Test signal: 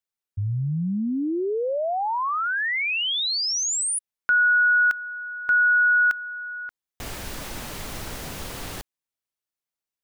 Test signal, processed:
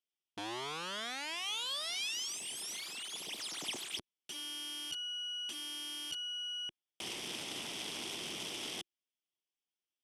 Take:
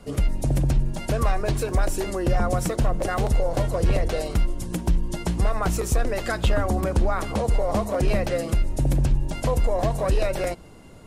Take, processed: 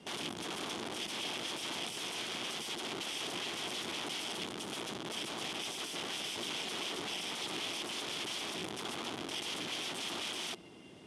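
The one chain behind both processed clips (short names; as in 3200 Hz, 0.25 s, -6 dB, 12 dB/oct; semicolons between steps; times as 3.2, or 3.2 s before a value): minimum comb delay 0.36 ms; compressor 12:1, threshold -22 dBFS; wrapped overs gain 31 dB; speaker cabinet 200–9800 Hz, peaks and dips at 350 Hz +4 dB, 530 Hz -5 dB, 1700 Hz -3 dB, 3300 Hz +9 dB, 7800 Hz -5 dB; gain -4 dB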